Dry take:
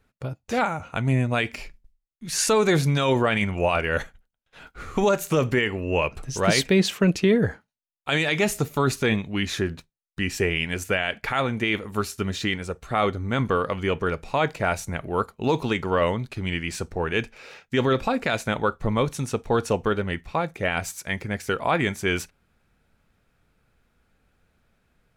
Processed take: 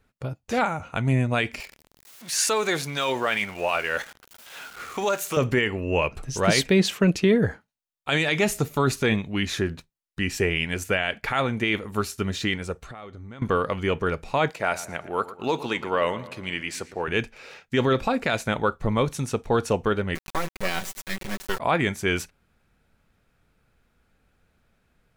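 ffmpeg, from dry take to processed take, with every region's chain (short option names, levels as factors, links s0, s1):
-filter_complex "[0:a]asettb=1/sr,asplit=3[s0][s1][s2];[s0]atrim=end=1.604[s3];[s1]atrim=start=1.6:end=5.37,asetpts=PTS-STARTPTS,afade=t=in:d=0.004:c=qsin,afade=t=out:st=3.766:d=0.004:c=qsin,aeval=exprs='val(0)+0.5*0.015*sgn(val(0))':c=same,highpass=f=740:p=1[s4];[s2]atrim=start=5.366[s5];[s3][s4]acrossfade=d=0.004:c1=hsin:c2=qsin[s6];[s6][s5]acrossfade=d=0.004:c1=qsin:c2=hsin,asettb=1/sr,asplit=3[s7][s8][s9];[s7]atrim=end=12.844[s10];[s8]atrim=start=12.84:end=13.42,asetpts=PTS-STARTPTS,afade=t=in:d=0.004:c=qsin,afade=t=out:st=0.576:d=0.004:c=qsin,lowpass=9400,acompressor=threshold=0.0158:ratio=12:attack=3.2:release=140:knee=1:detection=peak[s11];[s9]atrim=start=13.416[s12];[s10][s11]acrossfade=d=0.004:c1=hsin:c2=qsin[s13];[s13][s12]acrossfade=d=0.004:c1=qsin:c2=hsin,asettb=1/sr,asplit=3[s14][s15][s16];[s14]atrim=end=14.504[s17];[s15]atrim=start=14.5:end=17.08,asetpts=PTS-STARTPTS,afade=t=in:d=0.004:c=qsin,afade=t=out:st=2.576:d=0.004:c=qsin,highpass=f=400:p=1,asplit=2[s18][s19];[s19]adelay=115,lowpass=f=3300:p=1,volume=0.178,asplit=2[s20][s21];[s21]adelay=115,lowpass=f=3300:p=1,volume=0.52,asplit=2[s22][s23];[s23]adelay=115,lowpass=f=3300:p=1,volume=0.52,asplit=2[s24][s25];[s25]adelay=115,lowpass=f=3300:p=1,volume=0.52,asplit=2[s26][s27];[s27]adelay=115,lowpass=f=3300:p=1,volume=0.52[s28];[s18][s20][s22][s24][s26][s28]amix=inputs=6:normalize=0,atrim=end_sample=113778[s29];[s16]atrim=start=17.076[s30];[s17][s29]acrossfade=d=0.004:c1=hsin:c2=qsin[s31];[s31][s30]acrossfade=d=0.004:c1=qsin:c2=hsin,asettb=1/sr,asplit=3[s32][s33][s34];[s32]atrim=end=20.154[s35];[s33]atrim=start=20.15:end=21.6,asetpts=PTS-STARTPTS,afade=t=in:d=0.004:c=qsin,afade=t=out:st=1.446:d=0.004:c=qsin,acrusher=bits=3:dc=4:mix=0:aa=0.000001,aecho=1:1:5.3:0.57,atrim=end_sample=63945[s36];[s34]atrim=start=21.596[s37];[s35][s36]acrossfade=d=0.004:c1=hsin:c2=qsin[s38];[s38][s37]acrossfade=d=0.004:c1=qsin:c2=hsin"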